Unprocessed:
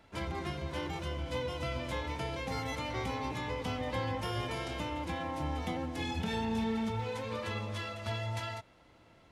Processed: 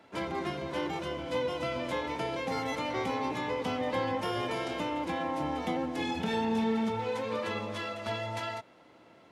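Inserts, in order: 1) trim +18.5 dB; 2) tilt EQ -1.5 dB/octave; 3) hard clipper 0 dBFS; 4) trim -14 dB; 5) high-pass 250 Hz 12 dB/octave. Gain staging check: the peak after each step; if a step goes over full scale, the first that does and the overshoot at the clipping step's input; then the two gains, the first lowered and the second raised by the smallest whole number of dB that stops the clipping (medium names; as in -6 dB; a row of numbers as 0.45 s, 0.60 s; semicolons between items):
-3.5 dBFS, -1.5 dBFS, -1.5 dBFS, -15.5 dBFS, -19.0 dBFS; nothing clips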